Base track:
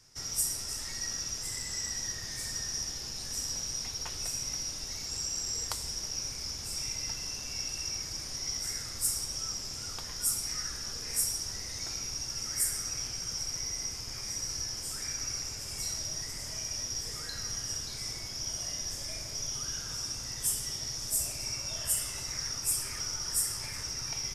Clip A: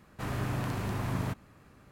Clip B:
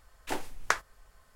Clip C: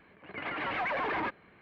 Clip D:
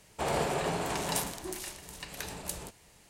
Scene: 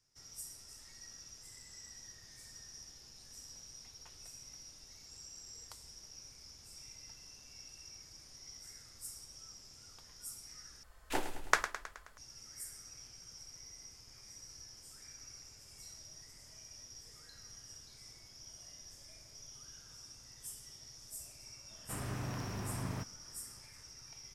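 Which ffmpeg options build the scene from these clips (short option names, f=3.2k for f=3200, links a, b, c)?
-filter_complex "[0:a]volume=-17dB[a];[2:a]aecho=1:1:106|212|318|424|530|636:0.299|0.167|0.0936|0.0524|0.0294|0.0164[b];[a]asplit=2[c][d];[c]atrim=end=10.834[e];[b]atrim=end=1.35,asetpts=PTS-STARTPTS,volume=-1.5dB[f];[d]atrim=start=12.176[g];[1:a]atrim=end=1.91,asetpts=PTS-STARTPTS,volume=-7.5dB,afade=t=in:d=0.004:c=hsin,afade=t=out:st=1.906:d=0.004:c=hsin,adelay=21700[h];[e][f]acrossfade=d=0.004:c1=hsin:c2=hsin[i];[i][g]acrossfade=d=0.004:c1=hsin:c2=hsin[j];[j][h]amix=inputs=2:normalize=0"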